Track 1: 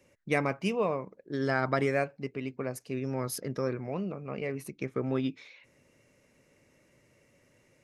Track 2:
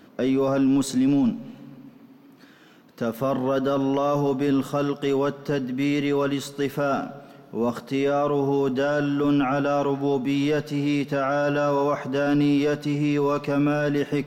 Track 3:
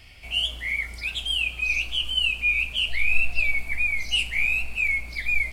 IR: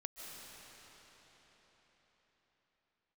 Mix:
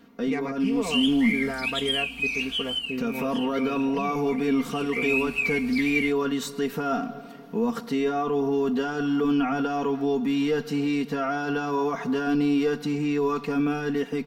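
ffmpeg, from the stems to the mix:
-filter_complex "[0:a]adynamicsmooth=sensitivity=3:basefreq=2.8k,volume=1dB[a];[1:a]dynaudnorm=f=370:g=7:m=7dB,volume=-6dB[b];[2:a]highpass=f=180:p=1,alimiter=limit=-20.5dB:level=0:latency=1:release=172,adelay=600,volume=12dB,afade=t=out:st=2.52:d=0.51:silence=0.251189,afade=t=in:st=4.79:d=0.35:silence=0.237137[c];[a][b]amix=inputs=2:normalize=0,alimiter=limit=-19.5dB:level=0:latency=1:release=172,volume=0dB[d];[c][d]amix=inputs=2:normalize=0,equalizer=f=590:w=7.9:g=-11,aecho=1:1:4.3:0.72"

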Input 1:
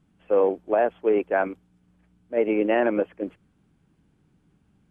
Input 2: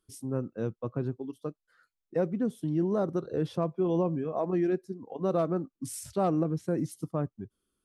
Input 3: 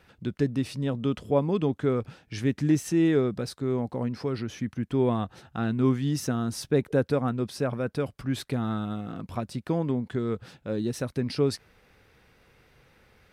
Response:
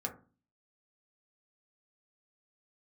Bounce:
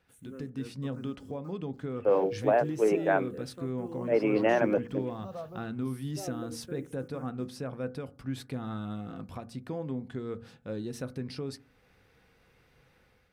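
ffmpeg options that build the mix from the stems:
-filter_complex "[0:a]bandreject=f=60:t=h:w=6,bandreject=f=120:t=h:w=6,bandreject=f=180:t=h:w=6,bandreject=f=240:t=h:w=6,bandreject=f=300:t=h:w=6,bandreject=f=360:t=h:w=6,bandreject=f=420:t=h:w=6,bandreject=f=480:t=h:w=6,adelay=1750,volume=-3dB[a];[1:a]equalizer=f=1.9k:t=o:w=1.4:g=6,acrusher=bits=8:mix=0:aa=0.000001,asplit=2[b][c];[c]afreqshift=-0.31[d];[b][d]amix=inputs=2:normalize=1,volume=-15dB,asplit=2[e][f];[f]volume=-8dB[g];[2:a]alimiter=limit=-22dB:level=0:latency=1:release=439,dynaudnorm=f=160:g=5:m=8dB,volume=-15.5dB,asplit=2[h][i];[i]volume=-7.5dB[j];[3:a]atrim=start_sample=2205[k];[g][j]amix=inputs=2:normalize=0[l];[l][k]afir=irnorm=-1:irlink=0[m];[a][e][h][m]amix=inputs=4:normalize=0"

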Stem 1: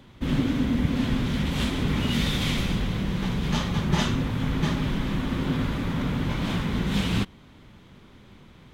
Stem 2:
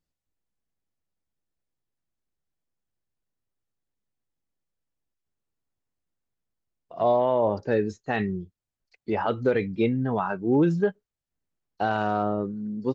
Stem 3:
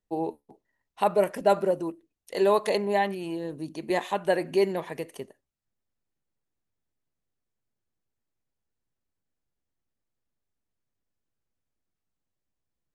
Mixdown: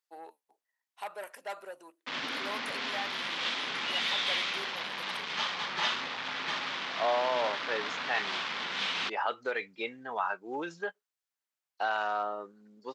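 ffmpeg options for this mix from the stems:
-filter_complex "[0:a]acrusher=bits=4:mix=0:aa=0.5,lowpass=f=4.9k:w=0.5412,lowpass=f=4.9k:w=1.3066,adelay=1850,volume=0.5dB[a];[1:a]volume=0dB[b];[2:a]asoftclip=type=tanh:threshold=-19.5dB,volume=-7dB[c];[a][b][c]amix=inputs=3:normalize=0,highpass=940"

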